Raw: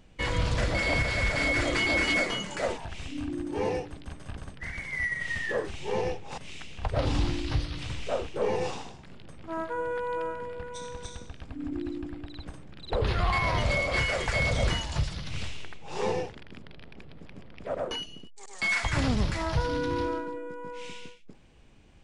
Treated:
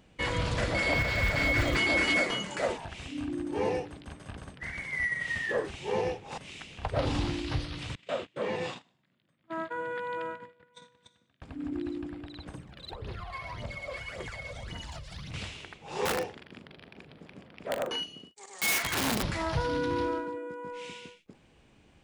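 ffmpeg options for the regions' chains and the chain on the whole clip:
ffmpeg -i in.wav -filter_complex "[0:a]asettb=1/sr,asplit=3[link_01][link_02][link_03];[link_01]atrim=end=0.924[link_04];[link_02]atrim=start=0.92:end=1.77,asetpts=PTS-STARTPTS,afade=type=in:duration=0.004:curve=qsin,afade=type=out:start_time=0.846:duration=0.004:curve=qsin,lowpass=7000,asubboost=boost=8.5:cutoff=200,acrusher=bits=8:mode=log:mix=0:aa=0.000001[link_05];[link_03]atrim=start=1.766[link_06];[link_04][link_05]acrossfade=duration=0.004:curve1=hsin:curve2=qsin[link_07];[link_07][link_06]acrossfade=duration=0.004:curve1=qsin:curve2=hsin,asettb=1/sr,asplit=3[link_08][link_09][link_10];[link_08]atrim=end=7.954[link_11];[link_09]atrim=start=7.95:end=11.42,asetpts=PTS-STARTPTS,afade=type=in:duration=0.004:curve=qsin,afade=type=out:start_time=3.466:duration=0.004:curve=qsin,highpass=frequency=110:width=0.5412,highpass=frequency=110:width=1.3066,equalizer=frequency=430:width_type=q:width=4:gain=-9,equalizer=frequency=820:width_type=q:width=4:gain=-7,equalizer=frequency=1900:width_type=q:width=4:gain=4,equalizer=frequency=3500:width_type=q:width=4:gain=4,equalizer=frequency=5800:width_type=q:width=4:gain=-7,lowpass=frequency=8300:width=0.5412,lowpass=frequency=8300:width=1.3066,agate=range=-22dB:threshold=-40dB:ratio=16:release=100:detection=peak[link_12];[link_10]atrim=start=11.416[link_13];[link_11][link_12]acrossfade=duration=0.004:curve1=hsin:curve2=qsin[link_14];[link_14][link_13]acrossfade=duration=0.004:curve1=qsin:curve2=hsin,asettb=1/sr,asplit=3[link_15][link_16][link_17];[link_15]atrim=end=12.544[link_18];[link_16]atrim=start=12.54:end=15.34,asetpts=PTS-STARTPTS,afade=type=in:duration=0.004:curve=qsin,afade=type=out:start_time=2.796:duration=0.004:curve=qsin,acompressor=threshold=-37dB:ratio=20:attack=3.2:release=140:knee=1:detection=peak,aphaser=in_gain=1:out_gain=1:delay=2:decay=0.6:speed=1.8:type=triangular[link_19];[link_17]atrim=start=15.336[link_20];[link_18][link_19]acrossfade=duration=0.004:curve1=hsin:curve2=qsin[link_21];[link_21][link_20]acrossfade=duration=0.004:curve1=qsin:curve2=hsin,asettb=1/sr,asplit=3[link_22][link_23][link_24];[link_22]atrim=end=16.054[link_25];[link_23]atrim=start=16.05:end=19.23,asetpts=PTS-STARTPTS,afade=type=in:duration=0.004:curve=qsin,afade=type=out:start_time=3.176:duration=0.004:curve=qsin,highpass=frequency=120:poles=1,aeval=exprs='(mod(13.3*val(0)+1,2)-1)/13.3':channel_layout=same,asplit=2[link_26][link_27];[link_27]adelay=41,volume=-10dB[link_28];[link_26][link_28]amix=inputs=2:normalize=0,atrim=end_sample=140238[link_29];[link_24]atrim=start=19.226[link_30];[link_25][link_29]acrossfade=duration=0.004:curve1=hsin:curve2=qsin[link_31];[link_31][link_30]acrossfade=duration=0.004:curve1=qsin:curve2=hsin,highpass=frequency=98:poles=1,equalizer=frequency=5700:width_type=o:width=0.77:gain=-2.5" out.wav

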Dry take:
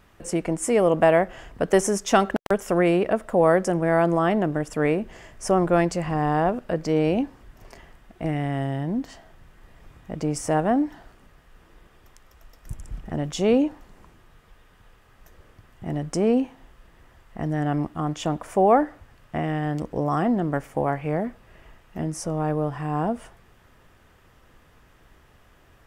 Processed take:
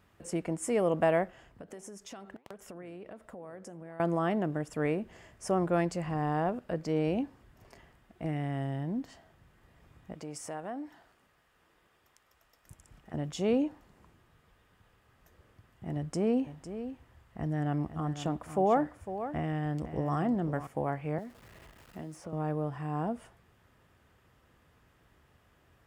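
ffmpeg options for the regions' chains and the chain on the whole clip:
ffmpeg -i in.wav -filter_complex "[0:a]asettb=1/sr,asplit=3[link_01][link_02][link_03];[link_01]atrim=end=1.304[link_04];[link_02]atrim=start=1.3:end=4,asetpts=PTS-STARTPTS,afade=type=in:duration=0.004:curve=qsin,afade=type=out:start_time=2.696:duration=0.004:curve=qsin,acompressor=threshold=-29dB:ratio=8:attack=3.2:release=140:knee=1:detection=peak,flanger=delay=0.5:depth=9.9:regen=89:speed=1.5:shape=sinusoidal[link_05];[link_03]atrim=start=3.996[link_06];[link_04][link_05]acrossfade=duration=0.004:curve1=hsin:curve2=qsin[link_07];[link_07][link_06]acrossfade=duration=0.004:curve1=qsin:curve2=hsin,asettb=1/sr,asplit=3[link_08][link_09][link_10];[link_08]atrim=end=10.134[link_11];[link_09]atrim=start=10.13:end=13.14,asetpts=PTS-STARTPTS,afade=type=in:duration=0.004:curve=qsin,afade=type=out:start_time=3.006:duration=0.004:curve=qsin,lowshelf=frequency=310:gain=-12,acompressor=threshold=-30dB:ratio=2:attack=3.2:release=140:knee=1:detection=peak[link_12];[link_10]atrim=start=13.136[link_13];[link_11][link_12]acrossfade=duration=0.004:curve1=hsin:curve2=qsin[link_14];[link_14][link_13]acrossfade=duration=0.004:curve1=qsin:curve2=hsin,asettb=1/sr,asplit=3[link_15][link_16][link_17];[link_15]atrim=end=15.964[link_18];[link_16]atrim=start=15.96:end=20.67,asetpts=PTS-STARTPTS,afade=type=in:duration=0.004:curve=qsin,afade=type=out:start_time=4.706:duration=0.004:curve=qsin,equalizer=frequency=70:width=1.1:gain=6.5,aecho=1:1:504:0.282,atrim=end_sample=207711[link_19];[link_17]atrim=start=20.666[link_20];[link_18][link_19]acrossfade=duration=0.004:curve1=hsin:curve2=qsin[link_21];[link_21][link_20]acrossfade=duration=0.004:curve1=qsin:curve2=hsin,asettb=1/sr,asplit=3[link_22][link_23][link_24];[link_22]atrim=end=21.184[link_25];[link_23]atrim=start=21.18:end=22.33,asetpts=PTS-STARTPTS,afade=type=in:duration=0.004:curve=qsin,afade=type=out:start_time=1.146:duration=0.004:curve=qsin,aeval=exprs='val(0)+0.5*0.0075*sgn(val(0))':channel_layout=same,acrossover=split=290|3400[link_26][link_27][link_28];[link_26]acompressor=threshold=-39dB:ratio=4[link_29];[link_27]acompressor=threshold=-34dB:ratio=4[link_30];[link_28]acompressor=threshold=-48dB:ratio=4[link_31];[link_29][link_30][link_31]amix=inputs=3:normalize=0[link_32];[link_24]atrim=start=22.326[link_33];[link_25][link_32]acrossfade=duration=0.004:curve1=hsin:curve2=qsin[link_34];[link_34][link_33]acrossfade=duration=0.004:curve1=qsin:curve2=hsin,highpass=76,lowshelf=frequency=120:gain=6.5,bandreject=frequency=5900:width=26,volume=-9dB" out.wav

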